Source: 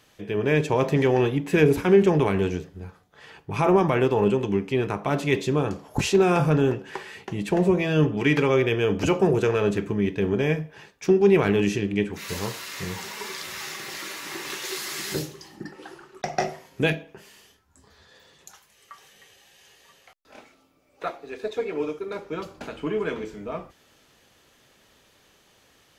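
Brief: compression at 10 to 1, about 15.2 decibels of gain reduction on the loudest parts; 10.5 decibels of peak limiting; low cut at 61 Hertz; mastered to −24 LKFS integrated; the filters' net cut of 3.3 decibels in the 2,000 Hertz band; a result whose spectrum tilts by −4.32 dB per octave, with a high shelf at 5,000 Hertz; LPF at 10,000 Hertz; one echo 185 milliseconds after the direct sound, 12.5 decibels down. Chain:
high-pass filter 61 Hz
low-pass filter 10,000 Hz
parametric band 2,000 Hz −5.5 dB
high-shelf EQ 5,000 Hz +7 dB
downward compressor 10 to 1, threshold −29 dBFS
brickwall limiter −24.5 dBFS
single-tap delay 185 ms −12.5 dB
level +11 dB

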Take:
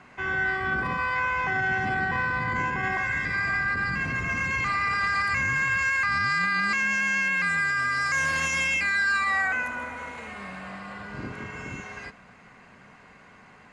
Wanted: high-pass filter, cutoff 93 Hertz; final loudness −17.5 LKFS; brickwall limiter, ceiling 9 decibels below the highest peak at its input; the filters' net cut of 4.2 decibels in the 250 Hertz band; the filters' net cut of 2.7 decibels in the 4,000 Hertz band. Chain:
high-pass filter 93 Hz
parametric band 250 Hz −6 dB
parametric band 4,000 Hz −3.5 dB
level +15 dB
brickwall limiter −11 dBFS

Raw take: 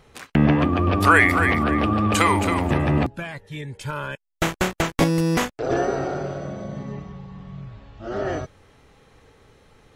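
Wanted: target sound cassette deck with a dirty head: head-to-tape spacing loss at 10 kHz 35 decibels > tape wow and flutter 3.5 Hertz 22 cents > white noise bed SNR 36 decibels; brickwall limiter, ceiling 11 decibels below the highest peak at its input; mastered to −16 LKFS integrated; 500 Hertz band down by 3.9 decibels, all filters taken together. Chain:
parametric band 500 Hz −3 dB
brickwall limiter −14 dBFS
head-to-tape spacing loss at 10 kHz 35 dB
tape wow and flutter 3.5 Hz 22 cents
white noise bed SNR 36 dB
level +11.5 dB

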